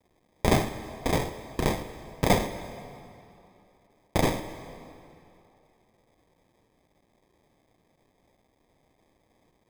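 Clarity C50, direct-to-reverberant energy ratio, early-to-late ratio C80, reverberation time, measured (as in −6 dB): 11.0 dB, 10.0 dB, 11.5 dB, 2.8 s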